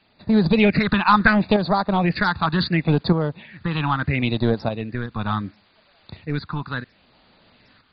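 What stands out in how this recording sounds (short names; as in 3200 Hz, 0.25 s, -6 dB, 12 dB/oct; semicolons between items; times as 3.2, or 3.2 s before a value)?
phasing stages 6, 0.72 Hz, lowest notch 540–2400 Hz; a quantiser's noise floor 10-bit, dither triangular; tremolo saw up 0.64 Hz, depth 55%; MP2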